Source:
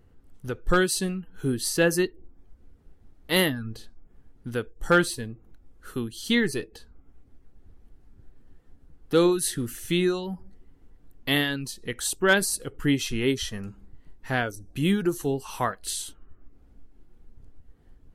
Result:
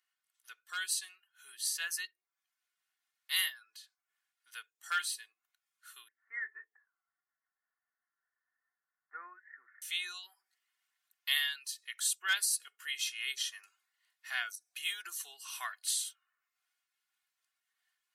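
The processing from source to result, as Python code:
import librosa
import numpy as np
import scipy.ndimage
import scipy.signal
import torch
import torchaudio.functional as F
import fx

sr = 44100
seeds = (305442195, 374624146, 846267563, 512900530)

y = fx.steep_lowpass(x, sr, hz=2000.0, slope=96, at=(6.08, 9.82))
y = scipy.signal.sosfilt(scipy.signal.bessel(4, 2100.0, 'highpass', norm='mag', fs=sr, output='sos'), y)
y = y + 0.6 * np.pad(y, (int(2.8 * sr / 1000.0), 0))[:len(y)]
y = fx.rider(y, sr, range_db=3, speed_s=2.0)
y = y * librosa.db_to_amplitude(-4.0)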